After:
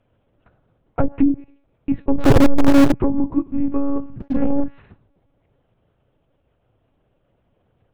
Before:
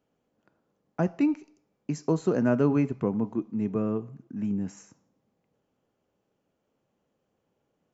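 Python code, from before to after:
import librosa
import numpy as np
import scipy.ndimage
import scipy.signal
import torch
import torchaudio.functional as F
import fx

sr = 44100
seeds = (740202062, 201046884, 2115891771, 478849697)

p1 = fx.lpc_monotone(x, sr, seeds[0], pitch_hz=280.0, order=8)
p2 = fx.peak_eq(p1, sr, hz=120.0, db=6.5, octaves=0.61)
p3 = fx.leveller(p2, sr, passes=3, at=(4.2, 4.64))
p4 = 10.0 ** (-21.5 / 20.0) * np.tanh(p3 / 10.0 ** (-21.5 / 20.0))
p5 = p3 + (p4 * librosa.db_to_amplitude(-9.0))
p6 = fx.env_lowpass_down(p5, sr, base_hz=320.0, full_db=-17.5)
p7 = fx.power_curve(p6, sr, exponent=0.35, at=(2.18, 2.92))
y = p7 * librosa.db_to_amplitude(8.0)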